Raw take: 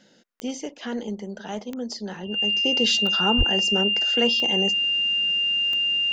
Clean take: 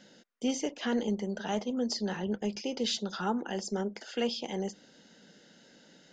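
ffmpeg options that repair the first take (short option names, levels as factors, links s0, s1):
-filter_complex "[0:a]adeclick=t=4,bandreject=f=2800:w=30,asplit=3[s0][s1][s2];[s0]afade=t=out:st=3.37:d=0.02[s3];[s1]highpass=f=140:w=0.5412,highpass=f=140:w=1.3066,afade=t=in:st=3.37:d=0.02,afade=t=out:st=3.49:d=0.02[s4];[s2]afade=t=in:st=3.49:d=0.02[s5];[s3][s4][s5]amix=inputs=3:normalize=0,asetnsamples=n=441:p=0,asendcmd='2.65 volume volume -7.5dB',volume=1"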